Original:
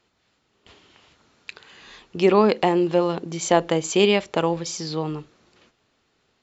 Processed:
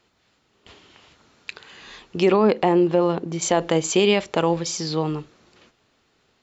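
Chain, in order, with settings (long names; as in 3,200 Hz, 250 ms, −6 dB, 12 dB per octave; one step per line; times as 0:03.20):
0:02.36–0:03.42: high-shelf EQ 2,700 Hz −9 dB
boost into a limiter +10 dB
level −7 dB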